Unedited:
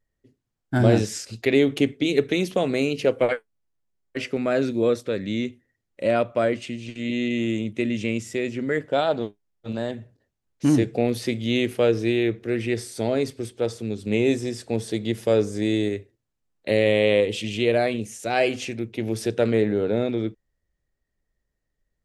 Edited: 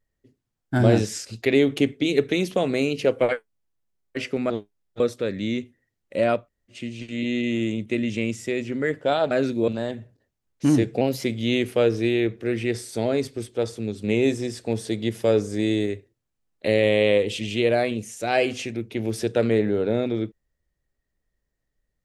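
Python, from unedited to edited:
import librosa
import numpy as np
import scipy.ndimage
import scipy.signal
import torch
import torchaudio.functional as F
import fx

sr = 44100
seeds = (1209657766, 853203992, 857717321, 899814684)

y = fx.edit(x, sr, fx.swap(start_s=4.5, length_s=0.37, other_s=9.18, other_length_s=0.5),
    fx.room_tone_fill(start_s=6.28, length_s=0.35, crossfade_s=0.16),
    fx.speed_span(start_s=11.01, length_s=0.26, speed=1.12), tone=tone)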